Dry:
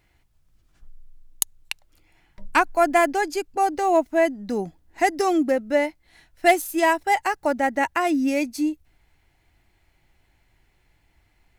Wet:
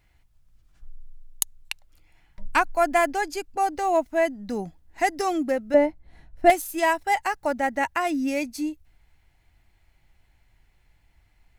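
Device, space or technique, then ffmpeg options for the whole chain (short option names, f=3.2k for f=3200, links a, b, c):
low shelf boost with a cut just above: -filter_complex "[0:a]lowshelf=f=75:g=6.5,equalizer=f=350:t=o:w=0.75:g=-4.5,asettb=1/sr,asplit=3[a][b][c];[a]atrim=end=5.744[d];[b]atrim=start=5.74:end=6.5,asetpts=PTS-STARTPTS,afade=t=in:d=0.004:c=qsin,afade=t=out:st=0.756:d=0.004:c=qsin,tiltshelf=f=1.2k:g=10[e];[c]atrim=start=6.496[f];[d][e]acrossfade=d=0.004:c1=hsin:c2=qsin[g];[g][f]acrossfade=d=0.004:c1=qsin:c2=hsin,volume=-2dB"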